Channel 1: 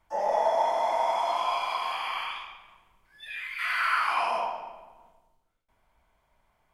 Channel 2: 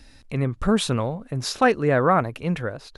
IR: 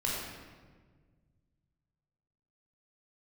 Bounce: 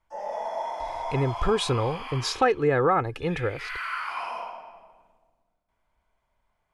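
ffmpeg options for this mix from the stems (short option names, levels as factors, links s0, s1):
-filter_complex "[0:a]volume=0.376,asplit=2[s0][s1];[s1]volume=0.266[s2];[1:a]highshelf=f=7900:g=-9,aecho=1:1:2.4:0.66,adelay=800,volume=1[s3];[2:a]atrim=start_sample=2205[s4];[s2][s4]afir=irnorm=-1:irlink=0[s5];[s0][s3][s5]amix=inputs=3:normalize=0,lowpass=11000,acompressor=threshold=0.0891:ratio=2"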